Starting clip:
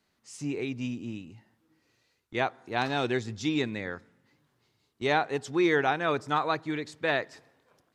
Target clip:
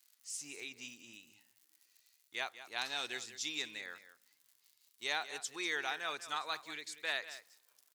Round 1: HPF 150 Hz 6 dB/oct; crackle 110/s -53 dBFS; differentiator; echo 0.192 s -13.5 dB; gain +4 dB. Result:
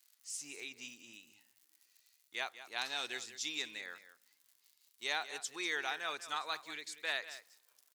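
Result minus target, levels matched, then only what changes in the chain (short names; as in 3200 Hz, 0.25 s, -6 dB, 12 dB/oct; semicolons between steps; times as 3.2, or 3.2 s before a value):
125 Hz band -3.0 dB
remove: HPF 150 Hz 6 dB/oct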